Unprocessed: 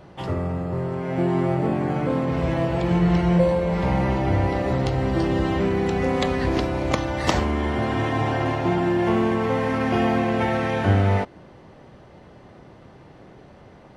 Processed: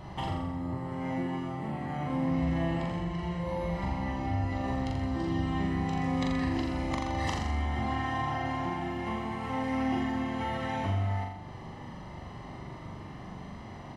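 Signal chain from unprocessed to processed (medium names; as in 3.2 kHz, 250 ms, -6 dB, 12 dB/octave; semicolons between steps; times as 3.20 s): comb 1 ms, depth 57%; compression 6:1, threshold -32 dBFS, peak gain reduction 19 dB; flutter echo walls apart 7.2 m, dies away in 0.82 s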